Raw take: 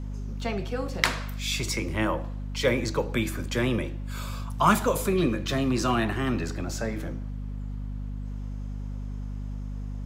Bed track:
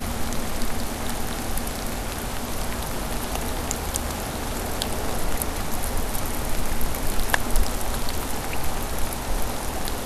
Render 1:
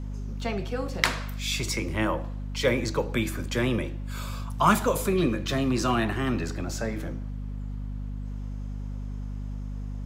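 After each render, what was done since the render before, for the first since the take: no audible change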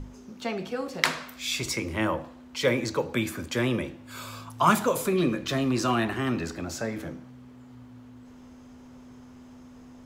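hum notches 50/100/150/200 Hz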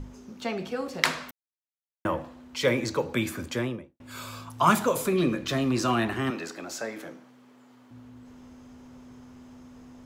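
1.31–2.05 s: mute; 3.42–4.00 s: studio fade out; 6.30–7.91 s: Bessel high-pass 390 Hz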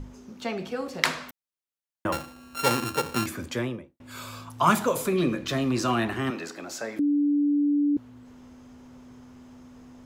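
2.12–3.26 s: sorted samples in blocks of 32 samples; 6.99–7.97 s: bleep 290 Hz -19.5 dBFS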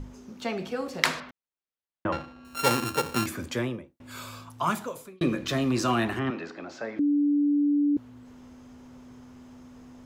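1.20–2.45 s: distance through air 210 m; 4.11–5.21 s: fade out; 6.19–7.97 s: distance through air 210 m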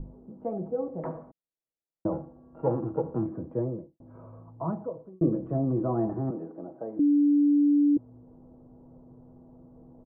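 inverse Chebyshev low-pass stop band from 4.3 kHz, stop band 80 dB; comb 6.2 ms, depth 51%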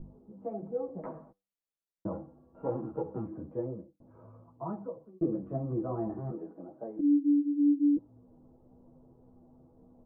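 feedback comb 98 Hz, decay 0.28 s, harmonics all, mix 30%; three-phase chorus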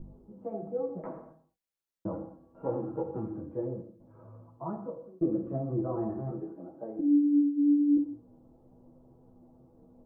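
gated-style reverb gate 260 ms falling, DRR 5.5 dB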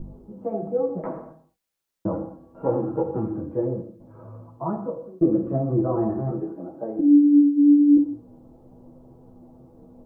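trim +9 dB

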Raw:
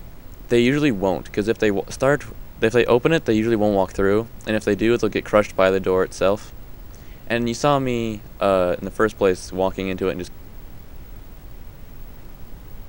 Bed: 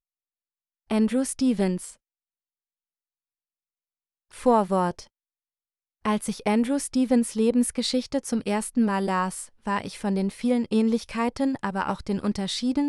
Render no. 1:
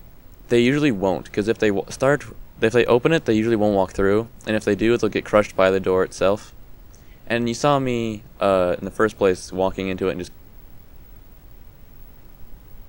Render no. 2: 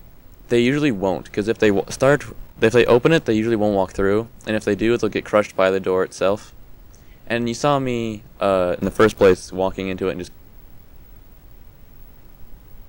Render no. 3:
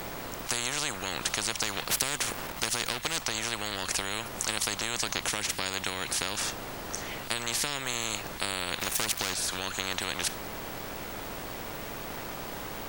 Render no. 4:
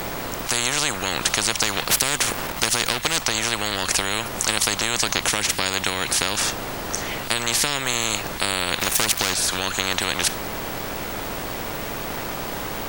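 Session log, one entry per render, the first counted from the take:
noise print and reduce 6 dB
1.62–3.23 s: waveshaping leveller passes 1; 5.29–6.30 s: high-pass 110 Hz 6 dB/octave; 8.80–9.34 s: waveshaping leveller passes 2
compression, threshold -20 dBFS, peak gain reduction 11 dB; spectrum-flattening compressor 10:1
trim +9 dB; peak limiter -1 dBFS, peak gain reduction 2.5 dB

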